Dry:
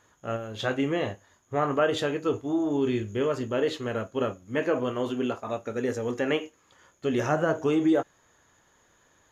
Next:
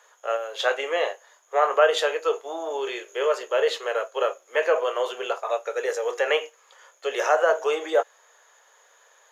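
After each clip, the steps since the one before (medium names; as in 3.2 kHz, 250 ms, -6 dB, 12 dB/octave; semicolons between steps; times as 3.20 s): steep high-pass 450 Hz 48 dB/octave; trim +6.5 dB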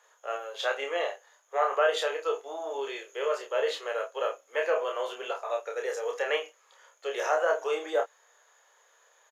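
doubling 29 ms -4 dB; trim -7 dB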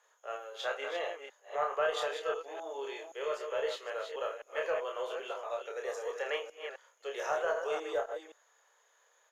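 chunks repeated in reverse 260 ms, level -7 dB; Chebyshev shaper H 2 -26 dB, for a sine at -12 dBFS; trim -6.5 dB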